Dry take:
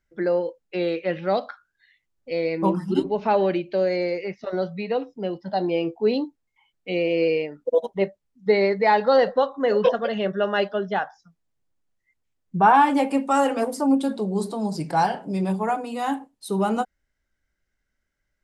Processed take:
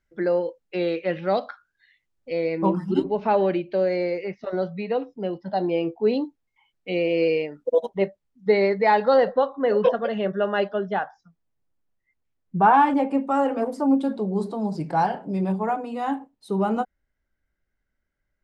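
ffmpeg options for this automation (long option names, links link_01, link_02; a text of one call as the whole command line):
ffmpeg -i in.wav -af "asetnsamples=nb_out_samples=441:pad=0,asendcmd='2.32 lowpass f 2900;6.25 lowpass f 5500;7.15 lowpass f 10000;7.89 lowpass f 4300;9.14 lowpass f 2100;12.94 lowpass f 1000;13.66 lowpass f 1700',lowpass=frequency=7200:poles=1" out.wav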